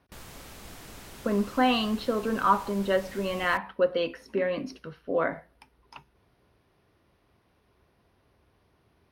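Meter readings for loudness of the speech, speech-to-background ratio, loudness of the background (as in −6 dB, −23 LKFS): −28.0 LKFS, 18.0 dB, −46.0 LKFS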